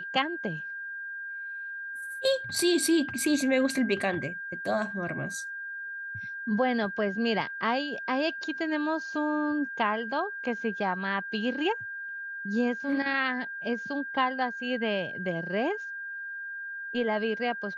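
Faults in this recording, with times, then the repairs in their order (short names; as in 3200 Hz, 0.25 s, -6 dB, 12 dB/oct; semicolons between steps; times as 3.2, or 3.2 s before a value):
tone 1600 Hz -35 dBFS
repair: notch 1600 Hz, Q 30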